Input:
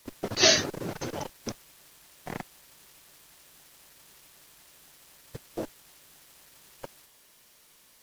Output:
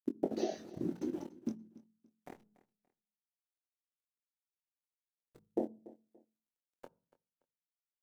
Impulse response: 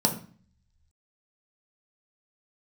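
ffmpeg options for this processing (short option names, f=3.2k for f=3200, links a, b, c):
-filter_complex "[0:a]aeval=exprs='sgn(val(0))*max(abs(val(0))-0.00668,0)':c=same,equalizer=f=330:w=0.65:g=8,bandreject=f=52.48:t=h:w=4,bandreject=f=104.96:t=h:w=4,bandreject=f=157.44:t=h:w=4,bandreject=f=209.92:t=h:w=4,acompressor=threshold=-34dB:ratio=12,asettb=1/sr,asplit=3[a][b][c];[a]atrim=end=2.344[d];[b]atrim=start=2.34:end=5.36,asetpts=PTS-STARTPTS,afade=t=in:d=0.004:c=qsin,afade=t=out:st=3.016:d=0.004:c=qsin,aeval=exprs='(tanh(398*val(0)+0.75)-tanh(0.75))/398':c=same[e];[c]atrim=start=5.356[f];[d][e]acrossfade=d=0.004:c1=hsin:c2=qsin[g];[g][f]acrossfade=d=0.004:c1=qsin:c2=hsin,afwtdn=0.0355,asplit=2[h][i];[i]adelay=23,volume=-8dB[j];[h][j]amix=inputs=2:normalize=0,aecho=1:1:287|574:0.1|0.028,asplit=2[k][l];[1:a]atrim=start_sample=2205,afade=t=out:st=0.35:d=0.01,atrim=end_sample=15876[m];[l][m]afir=irnorm=-1:irlink=0,volume=-29dB[n];[k][n]amix=inputs=2:normalize=0,volume=3.5dB"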